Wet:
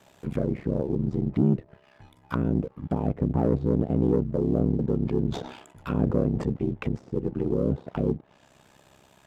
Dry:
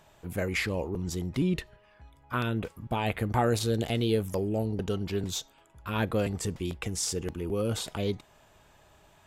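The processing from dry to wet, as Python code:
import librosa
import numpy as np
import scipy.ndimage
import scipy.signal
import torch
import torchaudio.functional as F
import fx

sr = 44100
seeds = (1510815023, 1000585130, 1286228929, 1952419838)

y = fx.diode_clip(x, sr, knee_db=-25.0)
y = fx.highpass(y, sr, hz=92.0, slope=6)
y = fx.env_lowpass_down(y, sr, base_hz=530.0, full_db=-30.0)
y = fx.leveller(y, sr, passes=1)
y = fx.tilt_shelf(y, sr, db=-3.0, hz=1500.0)
y = y * np.sin(2.0 * np.pi * 33.0 * np.arange(len(y)) / sr)
y = fx.peak_eq(y, sr, hz=200.0, db=8.5, octaves=3.0)
y = fx.sustainer(y, sr, db_per_s=68.0, at=(4.27, 6.53))
y = y * 10.0 ** (3.5 / 20.0)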